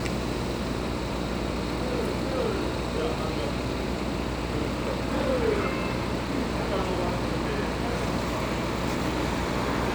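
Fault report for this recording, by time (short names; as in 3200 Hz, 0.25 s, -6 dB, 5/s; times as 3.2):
buzz 60 Hz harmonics 11 -33 dBFS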